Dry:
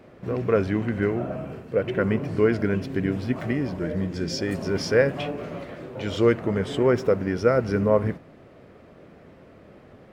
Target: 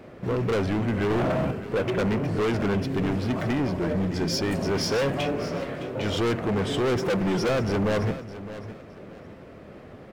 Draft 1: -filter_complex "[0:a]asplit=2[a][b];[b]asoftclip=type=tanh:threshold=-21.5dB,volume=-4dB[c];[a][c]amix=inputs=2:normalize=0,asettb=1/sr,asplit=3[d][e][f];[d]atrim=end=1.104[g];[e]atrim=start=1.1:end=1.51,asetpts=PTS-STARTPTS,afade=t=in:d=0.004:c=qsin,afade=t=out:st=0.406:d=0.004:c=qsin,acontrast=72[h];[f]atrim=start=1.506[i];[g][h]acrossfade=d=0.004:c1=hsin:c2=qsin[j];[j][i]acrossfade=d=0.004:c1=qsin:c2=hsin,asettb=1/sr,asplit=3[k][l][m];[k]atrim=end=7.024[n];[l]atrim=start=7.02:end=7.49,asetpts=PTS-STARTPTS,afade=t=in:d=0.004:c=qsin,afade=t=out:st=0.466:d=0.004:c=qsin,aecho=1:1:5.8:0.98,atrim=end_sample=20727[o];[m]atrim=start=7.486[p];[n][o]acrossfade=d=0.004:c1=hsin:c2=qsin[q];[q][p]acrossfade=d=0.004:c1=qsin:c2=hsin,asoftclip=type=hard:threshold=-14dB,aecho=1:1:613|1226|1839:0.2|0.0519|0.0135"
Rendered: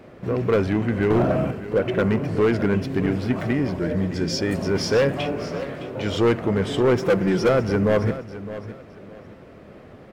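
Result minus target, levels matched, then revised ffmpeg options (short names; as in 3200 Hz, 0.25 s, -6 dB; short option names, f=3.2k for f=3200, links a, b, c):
hard clip: distortion -7 dB
-filter_complex "[0:a]asplit=2[a][b];[b]asoftclip=type=tanh:threshold=-21.5dB,volume=-4dB[c];[a][c]amix=inputs=2:normalize=0,asettb=1/sr,asplit=3[d][e][f];[d]atrim=end=1.104[g];[e]atrim=start=1.1:end=1.51,asetpts=PTS-STARTPTS,afade=t=in:d=0.004:c=qsin,afade=t=out:st=0.406:d=0.004:c=qsin,acontrast=72[h];[f]atrim=start=1.506[i];[g][h]acrossfade=d=0.004:c1=hsin:c2=qsin[j];[j][i]acrossfade=d=0.004:c1=qsin:c2=hsin,asettb=1/sr,asplit=3[k][l][m];[k]atrim=end=7.024[n];[l]atrim=start=7.02:end=7.49,asetpts=PTS-STARTPTS,afade=t=in:d=0.004:c=qsin,afade=t=out:st=0.466:d=0.004:c=qsin,aecho=1:1:5.8:0.98,atrim=end_sample=20727[o];[m]atrim=start=7.486[p];[n][o]acrossfade=d=0.004:c1=hsin:c2=qsin[q];[q][p]acrossfade=d=0.004:c1=qsin:c2=hsin,asoftclip=type=hard:threshold=-22dB,aecho=1:1:613|1226|1839:0.2|0.0519|0.0135"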